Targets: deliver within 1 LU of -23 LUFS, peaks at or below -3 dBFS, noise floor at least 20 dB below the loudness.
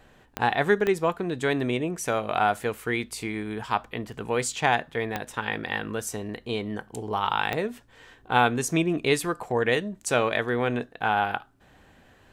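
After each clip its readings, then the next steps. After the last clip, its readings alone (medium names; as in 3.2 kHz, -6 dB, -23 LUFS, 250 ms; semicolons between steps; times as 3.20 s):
clicks found 4; loudness -27.0 LUFS; peak level -4.5 dBFS; loudness target -23.0 LUFS
-> de-click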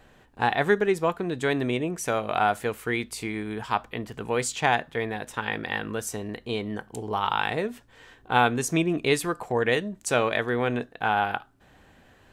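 clicks found 1; loudness -27.0 LUFS; peak level -4.5 dBFS; loudness target -23.0 LUFS
-> trim +4 dB; peak limiter -3 dBFS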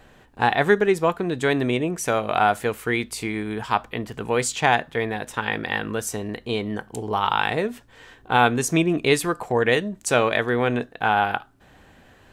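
loudness -23.0 LUFS; peak level -3.0 dBFS; noise floor -53 dBFS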